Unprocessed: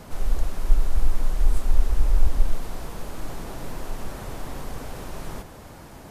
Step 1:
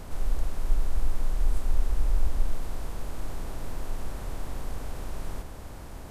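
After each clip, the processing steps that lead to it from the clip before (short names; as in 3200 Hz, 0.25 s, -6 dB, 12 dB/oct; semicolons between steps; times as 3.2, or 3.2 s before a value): per-bin compression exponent 0.6; gain -7.5 dB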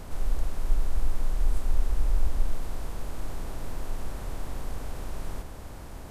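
nothing audible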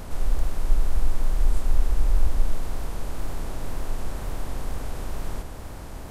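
wow and flutter 56 cents; gain +4 dB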